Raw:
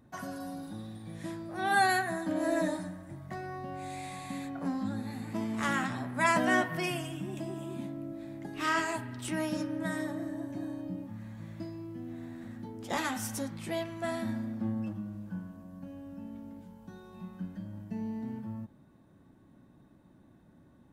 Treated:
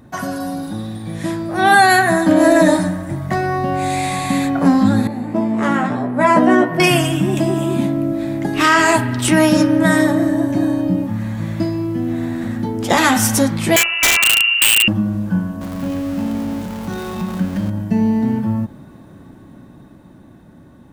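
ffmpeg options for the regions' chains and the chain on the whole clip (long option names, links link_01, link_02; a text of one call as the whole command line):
ffmpeg -i in.wav -filter_complex "[0:a]asettb=1/sr,asplit=3[link_01][link_02][link_03];[link_01]atrim=end=5.074[link_04];[link_02]atrim=start=5.07:end=6.8,asetpts=PTS-STARTPTS,afade=type=in:duration=0.004:curve=qsin,afade=type=out:start_time=1.726:duration=0.004:curve=qsin,bandpass=frequency=420:width_type=q:width=1.3,aemphasis=mode=production:type=50fm,asplit=2[link_05][link_06];[link_06]adelay=17,volume=-4.5dB[link_07];[link_05][link_07]amix=inputs=2:normalize=0,atrim=end_sample=76293[link_08];[link_03]atrim=start=6.796[link_09];[link_04][link_08]acrossfade=duration=0.004:curve1=hsin:curve2=qsin[link_10];[link_10][link_09]acrossfade=duration=0.004:curve1=qsin:curve2=hsin,asettb=1/sr,asplit=3[link_11][link_12][link_13];[link_11]atrim=end=13.764[link_14];[link_12]atrim=start=13.76:end=14.88,asetpts=PTS-STARTPTS,afade=type=in:duration=0.004:curve=qsin,afade=type=out:start_time=1.116:duration=0.004:curve=qsin,lowpass=frequency=2600:width_type=q:width=0.5098,lowpass=frequency=2600:width_type=q:width=0.6013,lowpass=frequency=2600:width_type=q:width=0.9,lowpass=frequency=2600:width_type=q:width=2.563,afreqshift=-3000,aeval=exprs='(mod(23.7*val(0)+1,2)-1)/23.7':channel_layout=same[link_15];[link_13]atrim=start=14.876[link_16];[link_14][link_15]acrossfade=duration=0.004:curve1=hsin:curve2=qsin[link_17];[link_17][link_16]acrossfade=duration=0.004:curve1=qsin:curve2=hsin,asettb=1/sr,asplit=3[link_18][link_19][link_20];[link_18]atrim=end=15.614[link_21];[link_19]atrim=start=15.61:end=17.7,asetpts=PTS-STARTPTS,afade=type=in:duration=0.004:curve=qsin,afade=type=out:start_time=2.086:duration=0.004:curve=qsin,aeval=exprs='val(0)+0.5*0.00398*sgn(val(0))':channel_layout=same,bandreject=frequency=60:width_type=h:width=6,bandreject=frequency=120:width_type=h:width=6,bandreject=frequency=180:width_type=h:width=6,bandreject=frequency=240:width_type=h:width=6,bandreject=frequency=300:width_type=h:width=6,bandreject=frequency=360:width_type=h:width=6,bandreject=frequency=420:width_type=h:width=6,bandreject=frequency=480:width_type=h:width=6[link_22];[link_20]atrim=start=17.696[link_23];[link_21][link_22]acrossfade=duration=0.004:curve1=hsin:curve2=qsin[link_24];[link_24][link_23]acrossfade=duration=0.004:curve1=qsin:curve2=hsin,dynaudnorm=framelen=220:gausssize=17:maxgain=5dB,alimiter=level_in=17dB:limit=-1dB:release=50:level=0:latency=1,volume=-1dB" out.wav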